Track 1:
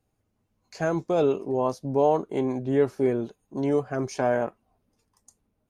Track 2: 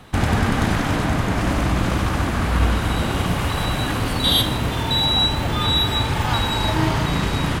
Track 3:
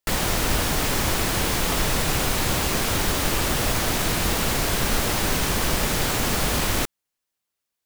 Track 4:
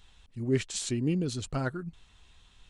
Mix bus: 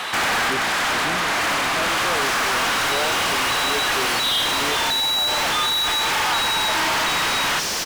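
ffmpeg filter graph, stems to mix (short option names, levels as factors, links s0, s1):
-filter_complex "[0:a]adelay=950,volume=0.211[s0];[1:a]highpass=f=1200:p=1,acrossover=split=3200[s1][s2];[s2]acompressor=threshold=0.0251:ratio=4:attack=1:release=60[s3];[s1][s3]amix=inputs=2:normalize=0,volume=0.891[s4];[2:a]equalizer=f=5600:w=1.5:g=11,adelay=2150,volume=0.112[s5];[3:a]volume=0.2,asplit=2[s6][s7];[s7]apad=whole_len=335162[s8];[s4][s8]sidechaincompress=threshold=0.00631:ratio=8:attack=16:release=684[s9];[s0][s9][s5][s6]amix=inputs=4:normalize=0,asplit=2[s10][s11];[s11]highpass=f=720:p=1,volume=50.1,asoftclip=type=tanh:threshold=0.2[s12];[s10][s12]amix=inputs=2:normalize=0,lowpass=f=4900:p=1,volume=0.501"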